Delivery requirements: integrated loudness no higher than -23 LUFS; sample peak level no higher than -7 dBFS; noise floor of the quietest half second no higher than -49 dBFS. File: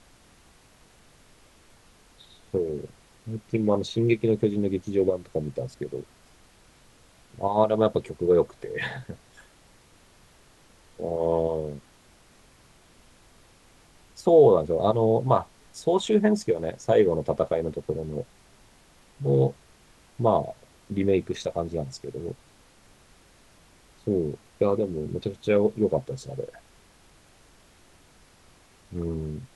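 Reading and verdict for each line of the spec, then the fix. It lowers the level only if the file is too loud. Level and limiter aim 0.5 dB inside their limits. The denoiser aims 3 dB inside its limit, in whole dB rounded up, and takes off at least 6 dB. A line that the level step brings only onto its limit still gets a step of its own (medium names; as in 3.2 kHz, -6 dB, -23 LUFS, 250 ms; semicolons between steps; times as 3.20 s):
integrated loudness -25.5 LUFS: pass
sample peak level -6.5 dBFS: fail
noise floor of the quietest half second -57 dBFS: pass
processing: peak limiter -7.5 dBFS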